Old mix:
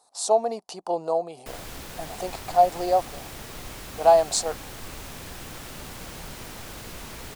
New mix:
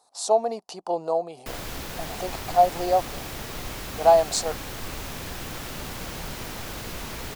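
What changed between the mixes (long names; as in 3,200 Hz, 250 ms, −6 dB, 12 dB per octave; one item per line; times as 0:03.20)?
background +4.5 dB
master: add parametric band 8,900 Hz −3.5 dB 0.57 octaves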